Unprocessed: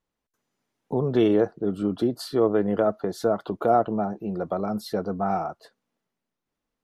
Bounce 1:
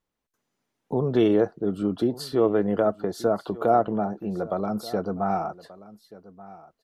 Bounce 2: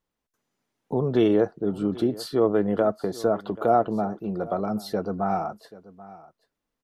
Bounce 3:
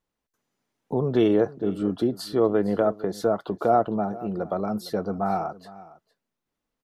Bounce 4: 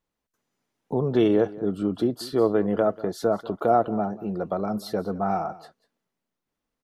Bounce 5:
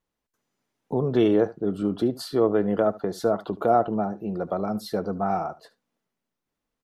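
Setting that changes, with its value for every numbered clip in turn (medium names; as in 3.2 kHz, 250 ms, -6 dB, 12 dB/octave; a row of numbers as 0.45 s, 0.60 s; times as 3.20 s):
delay, time: 1181 ms, 784 ms, 459 ms, 190 ms, 74 ms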